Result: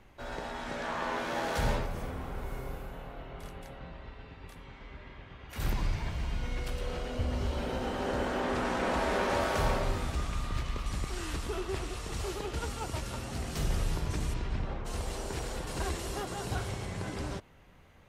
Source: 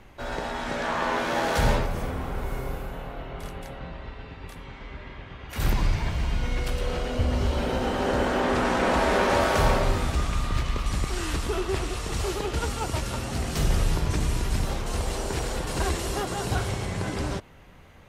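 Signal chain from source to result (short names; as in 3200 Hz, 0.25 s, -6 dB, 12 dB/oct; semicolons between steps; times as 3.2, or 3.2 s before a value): 14.33–14.84 LPF 4700 Hz -> 1900 Hz 12 dB/oct; gain -7.5 dB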